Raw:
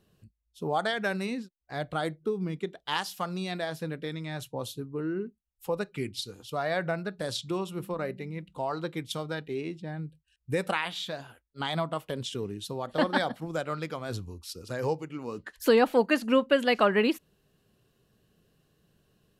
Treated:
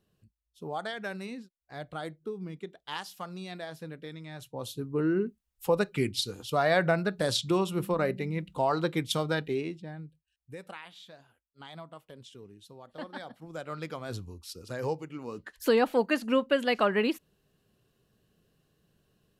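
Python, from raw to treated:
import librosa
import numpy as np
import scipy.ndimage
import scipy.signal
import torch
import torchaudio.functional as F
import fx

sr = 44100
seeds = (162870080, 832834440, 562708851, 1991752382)

y = fx.gain(x, sr, db=fx.line((4.39, -7.0), (4.99, 5.0), (9.46, 5.0), (9.78, -2.5), (10.56, -15.0), (13.17, -15.0), (13.86, -2.5)))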